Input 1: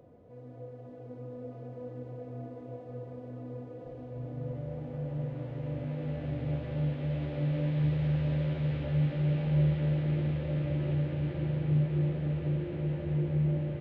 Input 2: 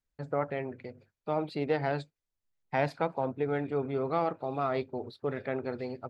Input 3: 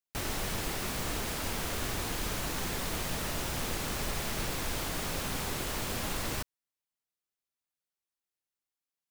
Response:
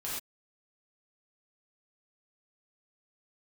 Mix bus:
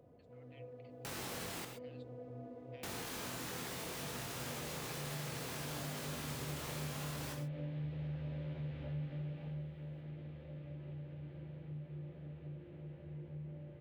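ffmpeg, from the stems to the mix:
-filter_complex "[0:a]volume=-7.5dB,afade=type=out:start_time=9.02:duration=0.72:silence=0.298538,asplit=2[link_01][link_02];[link_02]volume=-11.5dB[link_03];[1:a]acompressor=threshold=-35dB:ratio=3,highpass=frequency=2900:width_type=q:width=4.9,volume=-19dB[link_04];[2:a]highpass=120,alimiter=level_in=5.5dB:limit=-24dB:level=0:latency=1,volume=-5.5dB,flanger=delay=20:depth=4.3:speed=0.59,adelay=900,volume=0dB,asplit=3[link_05][link_06][link_07];[link_05]atrim=end=1.65,asetpts=PTS-STARTPTS,afade=type=out:start_time=1.646:duration=0.004:curve=hsin[link_08];[link_06]atrim=start=1.65:end=2.83,asetpts=PTS-STARTPTS,volume=0[link_09];[link_07]atrim=start=2.83,asetpts=PTS-STARTPTS,afade=type=in:duration=0.004:curve=hsin[link_10];[link_08][link_09][link_10]concat=n=3:v=0:a=1,asplit=2[link_11][link_12];[link_12]volume=-5.5dB[link_13];[3:a]atrim=start_sample=2205[link_14];[link_03][link_13]amix=inputs=2:normalize=0[link_15];[link_15][link_14]afir=irnorm=-1:irlink=0[link_16];[link_01][link_04][link_11][link_16]amix=inputs=4:normalize=0,acompressor=threshold=-44dB:ratio=2"

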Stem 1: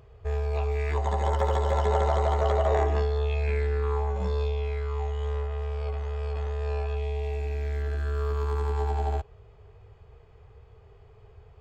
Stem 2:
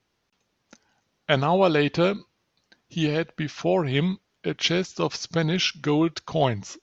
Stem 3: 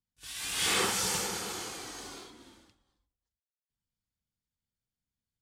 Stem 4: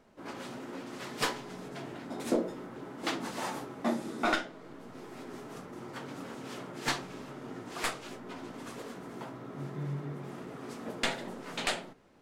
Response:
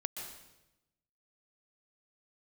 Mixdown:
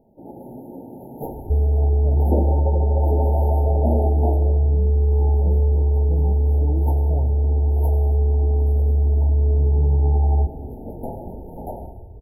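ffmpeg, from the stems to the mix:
-filter_complex "[0:a]lowpass=1100,adelay=1250,volume=1dB,asplit=2[link_01][link_02];[link_02]volume=-10dB[link_03];[1:a]adelay=750,volume=-12.5dB[link_04];[2:a]alimiter=level_in=1dB:limit=-24dB:level=0:latency=1,volume=-1dB,volume=-13dB,asplit=2[link_05][link_06];[link_06]volume=-4.5dB[link_07];[3:a]equalizer=frequency=91:width=0.68:gain=5.5,volume=1.5dB,asplit=3[link_08][link_09][link_10];[link_09]volume=-7dB[link_11];[link_10]volume=-10dB[link_12];[link_01][link_04][link_05]amix=inputs=3:normalize=0,aemphasis=mode=reproduction:type=bsi,acompressor=threshold=-15dB:ratio=6,volume=0dB[link_13];[4:a]atrim=start_sample=2205[link_14];[link_03][link_11]amix=inputs=2:normalize=0[link_15];[link_15][link_14]afir=irnorm=-1:irlink=0[link_16];[link_07][link_12]amix=inputs=2:normalize=0,aecho=0:1:94|188|282|376|470|564:1|0.46|0.212|0.0973|0.0448|0.0206[link_17];[link_08][link_13][link_16][link_17]amix=inputs=4:normalize=0,afftfilt=real='re*(1-between(b*sr/4096,930,11000))':imag='im*(1-between(b*sr/4096,930,11000))':win_size=4096:overlap=0.75"

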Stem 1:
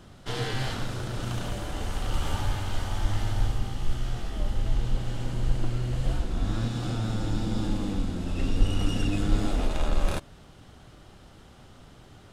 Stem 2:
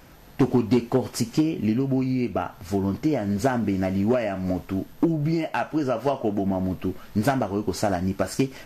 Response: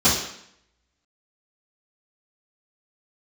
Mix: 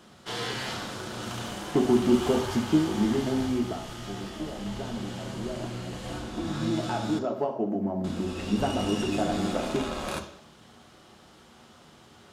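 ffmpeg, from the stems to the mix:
-filter_complex "[0:a]volume=0.5dB,asplit=3[link_01][link_02][link_03];[link_01]atrim=end=7.19,asetpts=PTS-STARTPTS,afade=type=out:start_time=7.186:duration=0.004:curve=hsin[link_04];[link_02]atrim=start=7.19:end=8.04,asetpts=PTS-STARTPTS,volume=0[link_05];[link_03]atrim=start=8.04,asetpts=PTS-STARTPTS,afade=type=in:duration=0.004:curve=hsin[link_06];[link_04][link_05][link_06]concat=n=3:v=0:a=1,asplit=2[link_07][link_08];[link_08]volume=-23.5dB[link_09];[1:a]tiltshelf=frequency=1400:gain=9,adelay=1350,volume=3dB,afade=type=out:start_time=3.53:duration=0.29:silence=0.223872,afade=type=in:start_time=6.37:duration=0.4:silence=0.298538,asplit=2[link_10][link_11];[link_11]volume=-23.5dB[link_12];[2:a]atrim=start_sample=2205[link_13];[link_09][link_12]amix=inputs=2:normalize=0[link_14];[link_14][link_13]afir=irnorm=-1:irlink=0[link_15];[link_07][link_10][link_15]amix=inputs=3:normalize=0,highpass=frequency=450:poles=1"

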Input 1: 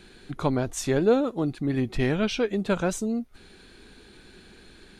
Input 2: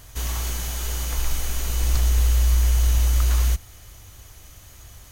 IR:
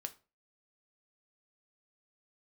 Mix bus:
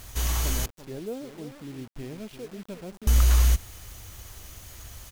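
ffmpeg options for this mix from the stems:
-filter_complex "[0:a]adynamicsmooth=sensitivity=3:basefreq=1400,equalizer=frequency=1400:width=1.1:gain=-12,volume=-13dB,asplit=2[link_01][link_02];[link_02]volume=-11dB[link_03];[1:a]volume=0.5dB,asplit=3[link_04][link_05][link_06];[link_04]atrim=end=0.66,asetpts=PTS-STARTPTS,afade=type=out:start_time=0.656:duration=0.004:curve=hsin[link_07];[link_05]atrim=start=0.66:end=3.07,asetpts=PTS-STARTPTS,volume=0[link_08];[link_06]atrim=start=3.07,asetpts=PTS-STARTPTS,afade=type=in:duration=0.004:curve=hsin[link_09];[link_07][link_08][link_09]concat=n=3:v=0:a=1[link_10];[link_03]aecho=0:1:344:1[link_11];[link_01][link_10][link_11]amix=inputs=3:normalize=0,acrusher=bits=7:mix=0:aa=0.000001"

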